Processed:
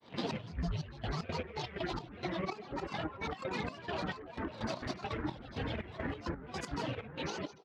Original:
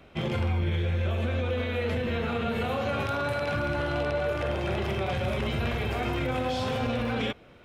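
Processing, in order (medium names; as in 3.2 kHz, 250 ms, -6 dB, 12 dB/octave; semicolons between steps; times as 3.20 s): rattle on loud lows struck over -31 dBFS, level -24 dBFS; on a send at -4 dB: reverberation RT60 0.80 s, pre-delay 47 ms; on the sum: reverb removal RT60 1.9 s; band-pass 100–3700 Hz; loudspeakers at several distances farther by 32 m -11 dB, 83 m -9 dB; upward compressor, threshold -41 dBFS; pre-echo 73 ms -13 dB; compression 5:1, threshold -32 dBFS, peak gain reduction 11.5 dB; trance gate ".xx..xx..x.x.x" 127 bpm -12 dB; granulator, spray 39 ms, pitch spread up and down by 12 st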